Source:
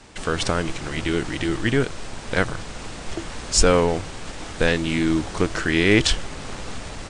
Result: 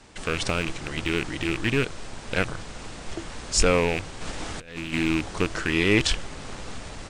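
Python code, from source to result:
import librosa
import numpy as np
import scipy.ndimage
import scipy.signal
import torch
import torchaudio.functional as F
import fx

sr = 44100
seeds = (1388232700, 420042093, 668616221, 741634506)

y = fx.rattle_buzz(x, sr, strikes_db=-25.0, level_db=-12.0)
y = fx.over_compress(y, sr, threshold_db=-26.0, ratio=-0.5, at=(4.2, 4.92), fade=0.02)
y = y * 10.0 ** (-4.0 / 20.0)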